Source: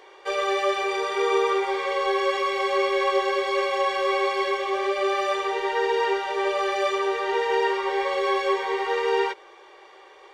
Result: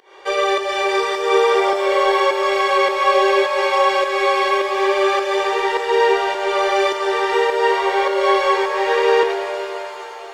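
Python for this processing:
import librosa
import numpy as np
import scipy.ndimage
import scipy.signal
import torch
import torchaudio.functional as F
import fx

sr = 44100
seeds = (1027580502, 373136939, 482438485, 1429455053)

y = fx.volume_shaper(x, sr, bpm=104, per_beat=1, depth_db=-20, release_ms=246.0, shape='fast start')
y = fx.rev_shimmer(y, sr, seeds[0], rt60_s=3.5, semitones=7, shimmer_db=-8, drr_db=6.0)
y = y * librosa.db_to_amplitude(6.5)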